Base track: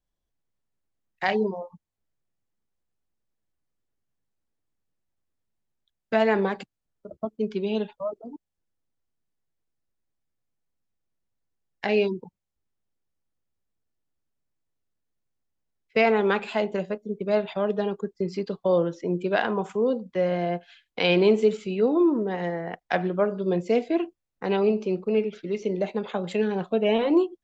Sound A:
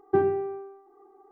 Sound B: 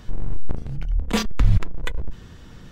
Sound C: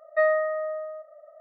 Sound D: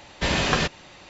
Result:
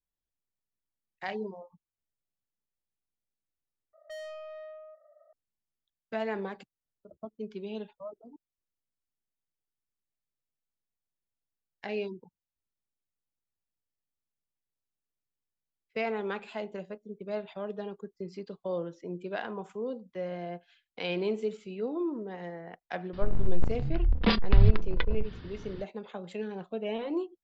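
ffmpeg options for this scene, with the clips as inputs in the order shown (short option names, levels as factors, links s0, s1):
-filter_complex "[0:a]volume=0.266[s0];[3:a]asoftclip=type=tanh:threshold=0.0355[s1];[2:a]aresample=11025,aresample=44100[s2];[s0]asplit=2[s3][s4];[s3]atrim=end=3.934[s5];[s1]atrim=end=1.4,asetpts=PTS-STARTPTS,volume=0.282[s6];[s4]atrim=start=5.326[s7];[s2]atrim=end=2.71,asetpts=PTS-STARTPTS,volume=0.794,afade=t=in:d=0.004:c=hsin,afade=t=out:st=2.706:d=0.004:c=hsin,adelay=23130[s8];[s5][s6]acrossfade=d=0.004:c1=hsin:c2=hsin[s9];[s9][s7]acrossfade=d=0.004:c1=hsin:c2=hsin[s10];[s10][s8]amix=inputs=2:normalize=0"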